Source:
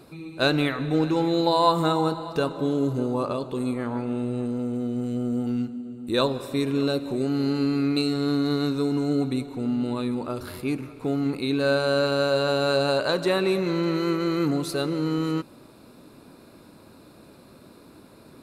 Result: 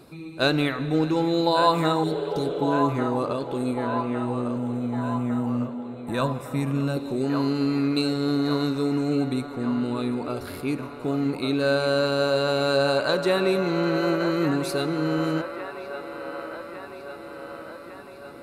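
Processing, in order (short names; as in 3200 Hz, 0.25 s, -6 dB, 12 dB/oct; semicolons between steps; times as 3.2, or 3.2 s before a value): 2.06–2.68 spectral repair 380–3600 Hz after; 4.56–6.97 fifteen-band EQ 160 Hz +8 dB, 400 Hz -10 dB, 4000 Hz -11 dB; band-limited delay 1.154 s, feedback 63%, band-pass 1100 Hz, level -5 dB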